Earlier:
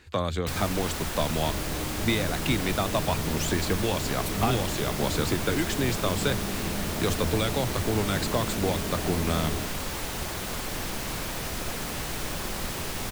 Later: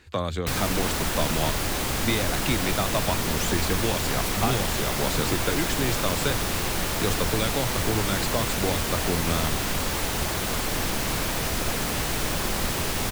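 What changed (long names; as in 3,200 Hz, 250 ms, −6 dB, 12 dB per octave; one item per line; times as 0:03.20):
first sound +7.5 dB
second sound: muted
reverb: off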